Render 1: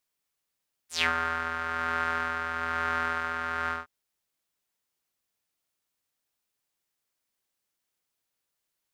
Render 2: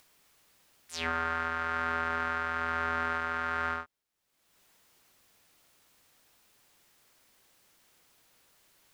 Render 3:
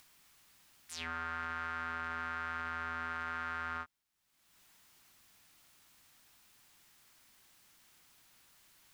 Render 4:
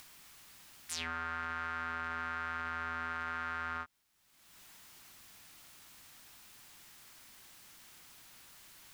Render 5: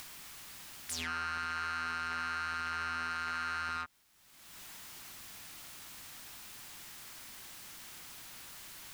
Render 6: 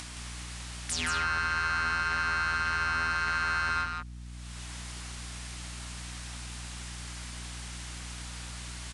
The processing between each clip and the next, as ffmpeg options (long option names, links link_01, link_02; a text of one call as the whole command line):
ffmpeg -i in.wav -filter_complex "[0:a]highshelf=frequency=4400:gain=-5,acrossover=split=690[link_01][link_02];[link_02]alimiter=limit=-21.5dB:level=0:latency=1:release=109[link_03];[link_01][link_03]amix=inputs=2:normalize=0,acompressor=mode=upward:threshold=-48dB:ratio=2.5" out.wav
ffmpeg -i in.wav -af "equalizer=frequency=490:width_type=o:width=1:gain=-8.5,alimiter=level_in=5dB:limit=-24dB:level=0:latency=1:release=11,volume=-5dB,volume=1dB" out.wav
ffmpeg -i in.wav -af "acompressor=threshold=-42dB:ratio=6,volume=8dB" out.wav
ffmpeg -i in.wav -af "asoftclip=type=tanh:threshold=-38.5dB,volume=7.5dB" out.wav
ffmpeg -i in.wav -filter_complex "[0:a]aeval=exprs='val(0)+0.00282*(sin(2*PI*60*n/s)+sin(2*PI*2*60*n/s)/2+sin(2*PI*3*60*n/s)/3+sin(2*PI*4*60*n/s)/4+sin(2*PI*5*60*n/s)/5)':channel_layout=same,asplit=2[link_01][link_02];[link_02]aecho=0:1:168:0.562[link_03];[link_01][link_03]amix=inputs=2:normalize=0,aresample=22050,aresample=44100,volume=6.5dB" out.wav